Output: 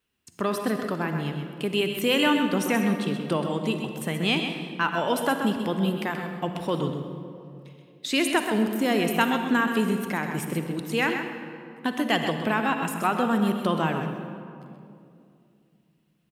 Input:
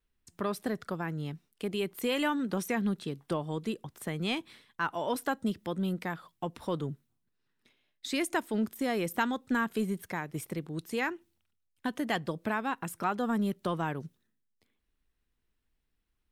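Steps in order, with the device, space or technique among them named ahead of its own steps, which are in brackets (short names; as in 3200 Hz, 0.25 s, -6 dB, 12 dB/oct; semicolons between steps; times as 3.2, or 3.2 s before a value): PA in a hall (HPF 110 Hz; bell 2800 Hz +7 dB 0.3 oct; echo 0.129 s -8.5 dB; reverb RT60 2.5 s, pre-delay 37 ms, DRR 6.5 dB); gain +6 dB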